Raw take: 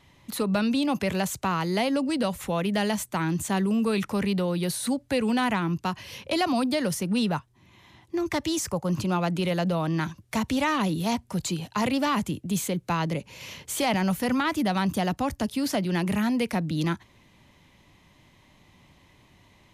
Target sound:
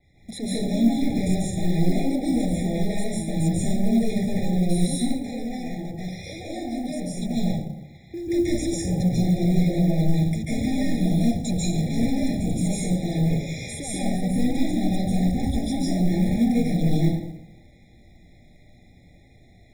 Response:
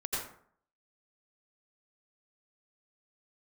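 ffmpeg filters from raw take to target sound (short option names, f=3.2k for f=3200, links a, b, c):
-filter_complex "[0:a]volume=32dB,asoftclip=hard,volume=-32dB,lowshelf=f=79:g=10,asettb=1/sr,asplit=3[a][b][c];[a]atrim=end=4.974[d];[b]atrim=start=4.97:end=7.22,asetpts=PTS-STARTPTS,afade=t=in:d=0.004:c=qsin,afade=t=out:st=2.246:d=0.004:c=qsin,acompressor=threshold=-41dB:ratio=4[e];[c]atrim=start=7.216[f];[d][e]acrossfade=d=0.004:c1=hsin:c2=qsin[g];[g][f]acrossfade=d=0.004:c1=qsin:c2=hsin,adynamicequalizer=threshold=0.00224:dfrequency=6500:dqfactor=1.1:tfrequency=6500:tqfactor=1.1:attack=5:release=100:ratio=0.375:range=3.5:mode=cutabove:tftype=bell,aresample=22050,aresample=44100,agate=range=-8dB:threshold=-49dB:ratio=16:detection=peak,acrossover=split=410|3000[h][i][j];[i]acompressor=threshold=-46dB:ratio=4[k];[h][k][j]amix=inputs=3:normalize=0,bandreject=f=50:t=h:w=6,bandreject=f=100:t=h:w=6,bandreject=f=150:t=h:w=6,bandreject=f=200:t=h:w=6,bandreject=f=250:t=h:w=6[l];[1:a]atrim=start_sample=2205,asetrate=26460,aresample=44100[m];[l][m]afir=irnorm=-1:irlink=0,acrusher=bits=7:mode=log:mix=0:aa=0.000001,bandreject=f=1.7k:w=5.5,afftfilt=real='re*eq(mod(floor(b*sr/1024/830),2),0)':imag='im*eq(mod(floor(b*sr/1024/830),2),0)':win_size=1024:overlap=0.75,volume=3dB"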